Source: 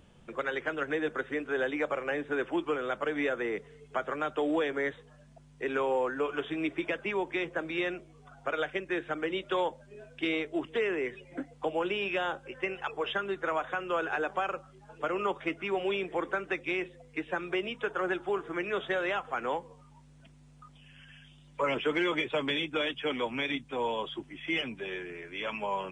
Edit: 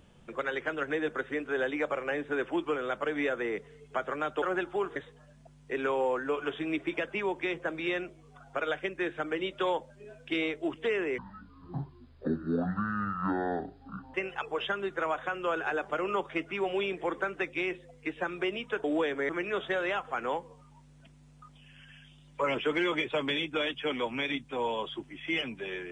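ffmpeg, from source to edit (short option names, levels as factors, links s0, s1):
-filter_complex "[0:a]asplit=8[s0][s1][s2][s3][s4][s5][s6][s7];[s0]atrim=end=4.422[s8];[s1]atrim=start=17.948:end=18.492[s9];[s2]atrim=start=4.868:end=11.094[s10];[s3]atrim=start=11.09:end=12.6,asetpts=PTS-STARTPTS,asetrate=22491,aresample=44100[s11];[s4]atrim=start=12.596:end=14.362[s12];[s5]atrim=start=15.008:end=17.952[s13];[s6]atrim=start=4.418:end=4.872[s14];[s7]atrim=start=18.488[s15];[s8][s9]acrossfade=d=0.004:c1=hsin:c2=hsin[s16];[s16][s10]acrossfade=d=0.004:c1=hsin:c2=hsin[s17];[s17][s11]acrossfade=d=0.004:c1=hsin:c2=hsin[s18];[s18][s12]acrossfade=d=0.004:c1=hsin:c2=hsin[s19];[s19][s13]acrossfade=d=0.004:c1=hsin:c2=hsin[s20];[s20][s14]acrossfade=d=0.004:c1=hsin:c2=hsin[s21];[s21][s15]acrossfade=d=0.004:c1=hsin:c2=hsin"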